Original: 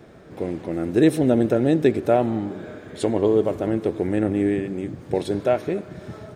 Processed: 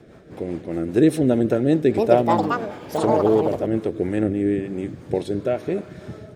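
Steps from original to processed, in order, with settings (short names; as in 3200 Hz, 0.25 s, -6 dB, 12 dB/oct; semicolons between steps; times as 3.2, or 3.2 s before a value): rotary speaker horn 5 Hz, later 1 Hz, at 3.46; 1.66–4.05 echoes that change speed 0.315 s, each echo +6 st, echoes 2; gain +1.5 dB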